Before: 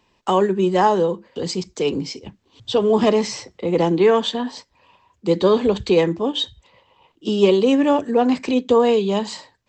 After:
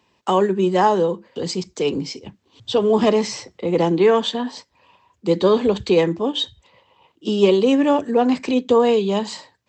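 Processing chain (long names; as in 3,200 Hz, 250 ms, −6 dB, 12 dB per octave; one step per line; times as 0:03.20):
high-pass filter 72 Hz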